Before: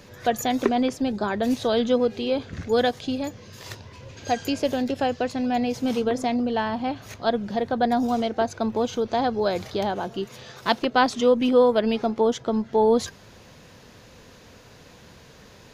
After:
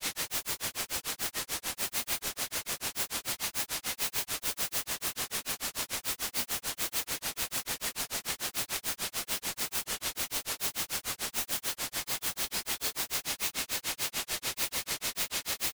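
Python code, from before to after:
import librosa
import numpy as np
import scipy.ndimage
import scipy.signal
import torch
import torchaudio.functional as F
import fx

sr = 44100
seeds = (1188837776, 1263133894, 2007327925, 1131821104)

y = scipy.signal.sosfilt(scipy.signal.ellip(4, 1.0, 40, 2000.0, 'highpass', fs=sr, output='sos'), x)
y = y + 0.84 * np.pad(y, (int(2.8 * sr / 1000.0), 0))[:len(y)]
y = fx.over_compress(y, sr, threshold_db=-54.0, ratio=-1.0)
y = fx.quant_dither(y, sr, seeds[0], bits=6, dither='triangular')
y = fx.granulator(y, sr, seeds[1], grain_ms=138.0, per_s=6.8, spray_ms=11.0, spread_st=0)
y = F.gain(torch.from_numpy(y), 7.0).numpy()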